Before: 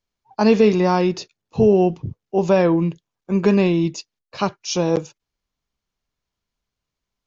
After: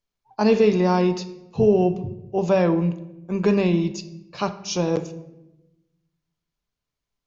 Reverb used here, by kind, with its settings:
rectangular room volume 370 cubic metres, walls mixed, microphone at 0.36 metres
level −3.5 dB

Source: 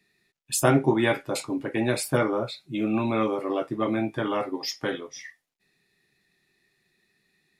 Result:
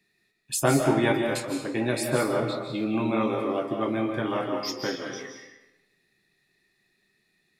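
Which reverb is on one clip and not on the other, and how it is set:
comb and all-pass reverb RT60 1 s, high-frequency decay 0.85×, pre-delay 115 ms, DRR 3 dB
level −2 dB

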